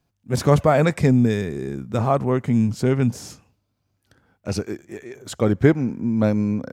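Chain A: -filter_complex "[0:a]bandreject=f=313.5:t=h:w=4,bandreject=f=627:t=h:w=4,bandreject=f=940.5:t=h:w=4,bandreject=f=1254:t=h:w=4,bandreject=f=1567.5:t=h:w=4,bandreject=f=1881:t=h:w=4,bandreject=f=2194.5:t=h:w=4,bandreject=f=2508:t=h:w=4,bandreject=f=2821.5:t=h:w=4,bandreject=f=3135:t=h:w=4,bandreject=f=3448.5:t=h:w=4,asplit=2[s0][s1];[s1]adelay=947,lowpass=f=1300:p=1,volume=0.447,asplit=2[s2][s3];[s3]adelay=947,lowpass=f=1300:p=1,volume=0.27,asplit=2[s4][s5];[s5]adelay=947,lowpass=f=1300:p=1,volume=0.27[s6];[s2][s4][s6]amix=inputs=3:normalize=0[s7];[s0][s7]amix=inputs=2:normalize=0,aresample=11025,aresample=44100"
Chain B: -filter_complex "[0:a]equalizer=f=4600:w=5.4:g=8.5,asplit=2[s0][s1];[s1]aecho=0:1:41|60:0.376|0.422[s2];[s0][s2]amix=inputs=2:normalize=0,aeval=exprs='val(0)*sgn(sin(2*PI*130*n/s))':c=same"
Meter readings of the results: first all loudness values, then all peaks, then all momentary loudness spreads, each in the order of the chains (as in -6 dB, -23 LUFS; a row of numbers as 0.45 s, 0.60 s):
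-21.0 LUFS, -20.0 LUFS; -2.0 dBFS, -1.5 dBFS; 14 LU, 15 LU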